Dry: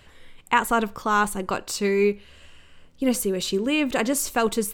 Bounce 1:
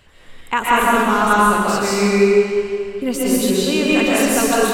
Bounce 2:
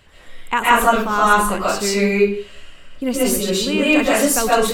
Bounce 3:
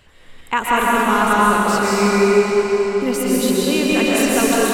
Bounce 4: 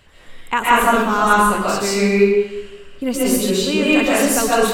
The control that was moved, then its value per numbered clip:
comb and all-pass reverb, RT60: 2.3, 0.41, 5, 1 seconds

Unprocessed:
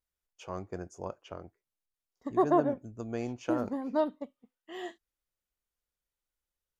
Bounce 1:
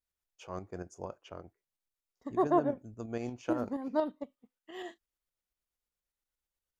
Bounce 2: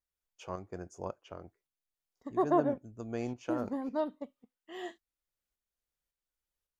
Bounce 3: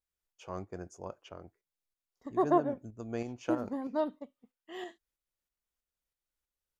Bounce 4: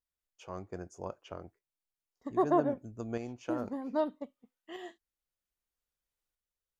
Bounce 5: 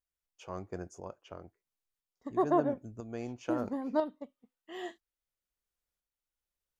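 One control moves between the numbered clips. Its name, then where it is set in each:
shaped tremolo, speed: 8.5, 1.8, 3.1, 0.63, 1 Hertz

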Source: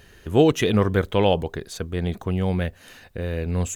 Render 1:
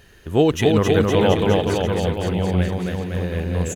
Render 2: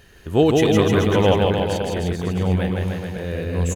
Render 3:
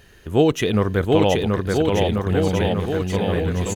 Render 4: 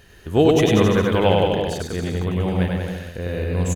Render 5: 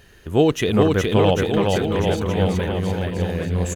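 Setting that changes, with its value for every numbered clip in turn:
bouncing-ball delay, first gap: 270, 160, 730, 100, 420 milliseconds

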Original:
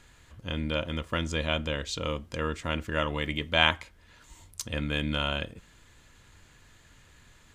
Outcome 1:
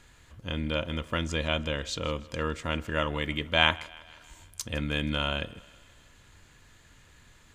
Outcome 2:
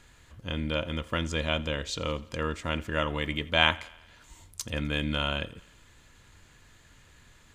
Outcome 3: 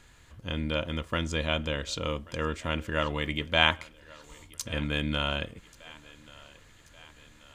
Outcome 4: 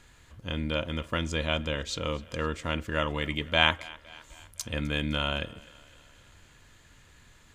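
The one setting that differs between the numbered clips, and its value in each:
feedback echo with a high-pass in the loop, delay time: 159, 85, 1,134, 256 milliseconds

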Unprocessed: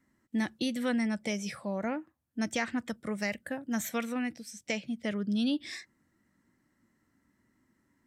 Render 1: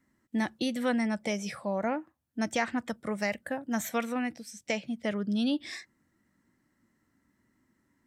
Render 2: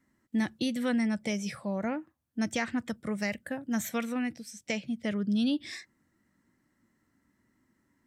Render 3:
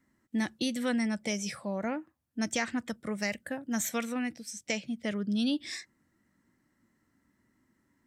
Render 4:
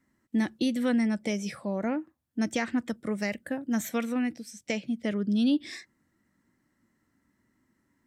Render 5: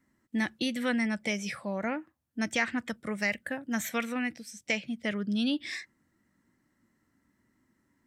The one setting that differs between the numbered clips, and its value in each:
dynamic equaliser, frequency: 810, 110, 7,100, 310, 2,100 Hertz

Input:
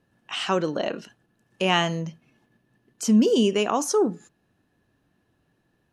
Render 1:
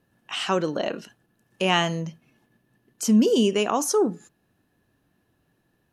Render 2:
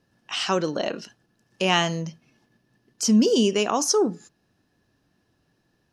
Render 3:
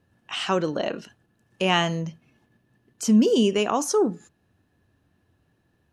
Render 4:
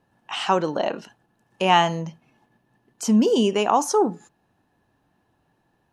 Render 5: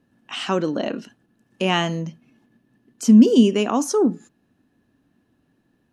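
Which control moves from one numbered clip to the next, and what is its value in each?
parametric band, centre frequency: 14,000, 5,200, 84, 860, 250 Hertz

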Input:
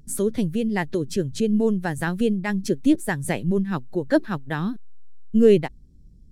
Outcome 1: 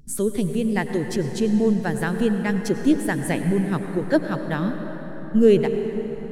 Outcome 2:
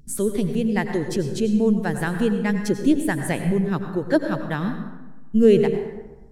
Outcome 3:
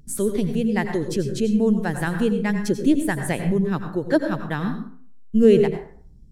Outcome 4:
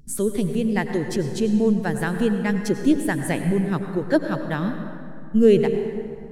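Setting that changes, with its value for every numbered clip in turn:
dense smooth reverb, RT60: 5.2, 1.2, 0.52, 2.5 seconds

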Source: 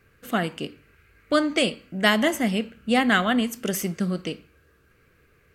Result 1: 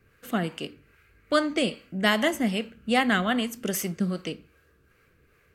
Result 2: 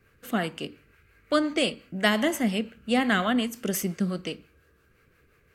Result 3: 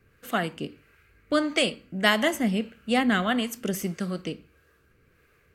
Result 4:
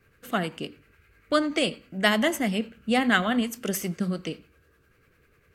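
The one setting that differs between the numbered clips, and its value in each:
two-band tremolo in antiphase, speed: 2.5, 5.7, 1.6, 10 Hertz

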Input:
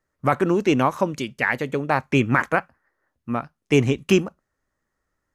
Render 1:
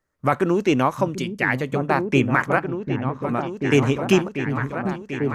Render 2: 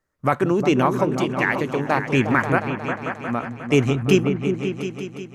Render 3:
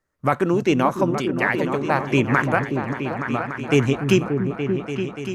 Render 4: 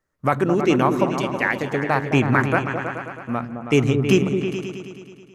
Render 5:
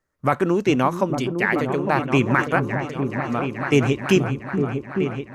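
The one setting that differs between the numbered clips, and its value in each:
echo whose low-pass opens from repeat to repeat, delay time: 742, 179, 290, 107, 428 milliseconds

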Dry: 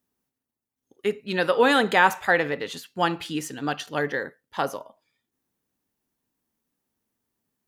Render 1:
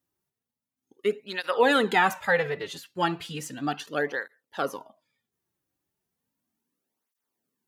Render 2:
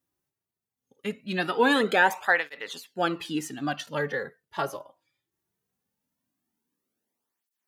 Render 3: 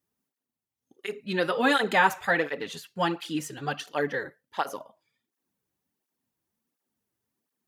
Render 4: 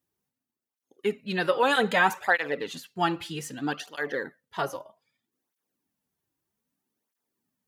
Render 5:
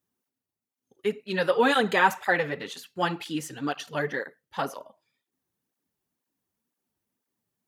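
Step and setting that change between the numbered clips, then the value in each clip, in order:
through-zero flanger with one copy inverted, nulls at: 0.35, 0.2, 1.4, 0.63, 2 Hertz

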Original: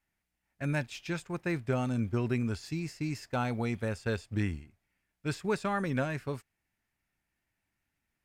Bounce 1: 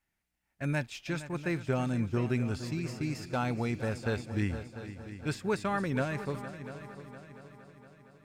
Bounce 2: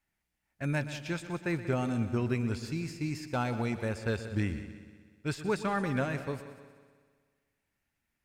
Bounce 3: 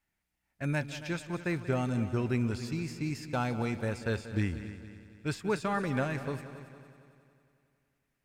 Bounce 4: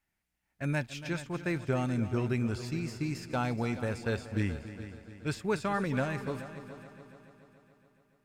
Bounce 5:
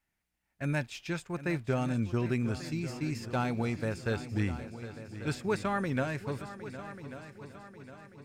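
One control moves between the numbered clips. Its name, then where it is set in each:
echo machine with several playback heads, delay time: 232, 62, 92, 142, 380 milliseconds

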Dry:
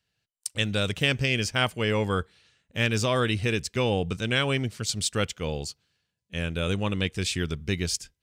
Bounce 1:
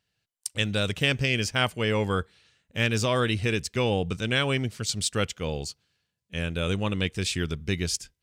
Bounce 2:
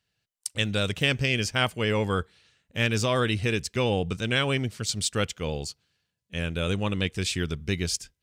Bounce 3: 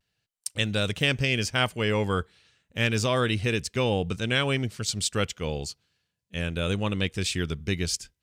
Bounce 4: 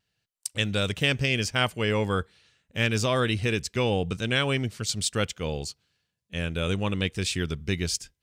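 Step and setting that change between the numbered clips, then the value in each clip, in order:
pitch vibrato, speed: 2.8, 14, 0.33, 1 Hertz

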